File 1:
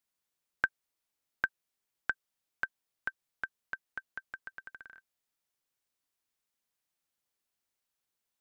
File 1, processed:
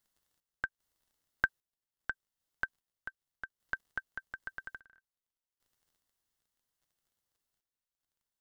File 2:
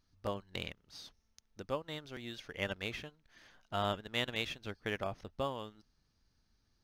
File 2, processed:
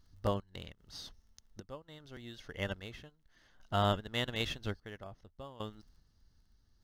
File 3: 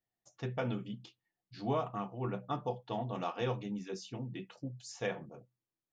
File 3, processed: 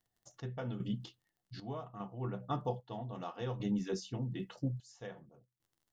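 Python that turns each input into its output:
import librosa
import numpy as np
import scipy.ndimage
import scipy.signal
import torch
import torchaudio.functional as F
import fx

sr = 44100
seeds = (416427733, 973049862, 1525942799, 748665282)

y = fx.dmg_crackle(x, sr, seeds[0], per_s=27.0, level_db=-63.0)
y = fx.low_shelf(y, sr, hz=110.0, db=10.0)
y = fx.notch(y, sr, hz=2400.0, q=6.1)
y = fx.tremolo_random(y, sr, seeds[1], hz=2.5, depth_pct=85)
y = y * 10.0 ** (4.0 / 20.0)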